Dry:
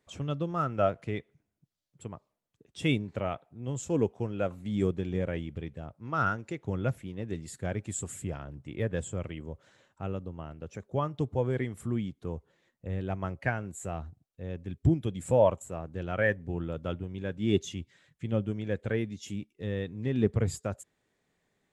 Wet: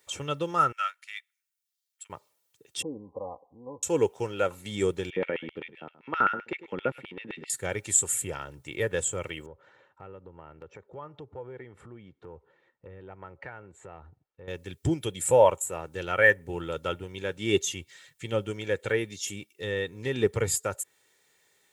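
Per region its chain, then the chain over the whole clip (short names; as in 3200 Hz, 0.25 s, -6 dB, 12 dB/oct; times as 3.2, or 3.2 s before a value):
0.72–2.1 HPF 1400 Hz 24 dB/oct + upward expander, over -58 dBFS
2.82–3.83 comb 3.9 ms, depth 73% + compressor 1.5:1, threshold -49 dBFS + brick-wall FIR low-pass 1200 Hz
5.1–7.5 echo 0.102 s -15.5 dB + LFO high-pass square 7.7 Hz 230–2500 Hz + air absorption 470 m
9.46–14.48 LPF 1400 Hz + compressor 3:1, threshold -44 dBFS
whole clip: tilt +3.5 dB/oct; comb 2.2 ms, depth 48%; dynamic EQ 4600 Hz, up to -6 dB, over -47 dBFS, Q 0.9; gain +6 dB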